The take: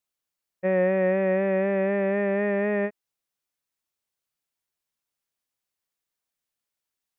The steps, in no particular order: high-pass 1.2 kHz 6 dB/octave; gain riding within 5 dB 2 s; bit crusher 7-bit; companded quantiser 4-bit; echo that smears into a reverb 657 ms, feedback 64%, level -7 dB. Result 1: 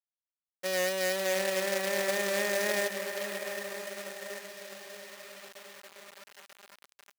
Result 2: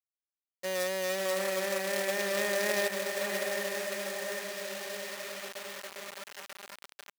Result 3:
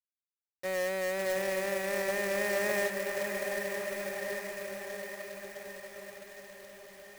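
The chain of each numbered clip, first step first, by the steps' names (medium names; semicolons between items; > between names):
gain riding > echo that smears into a reverb > bit crusher > companded quantiser > high-pass; echo that smears into a reverb > bit crusher > gain riding > companded quantiser > high-pass; high-pass > bit crusher > echo that smears into a reverb > gain riding > companded quantiser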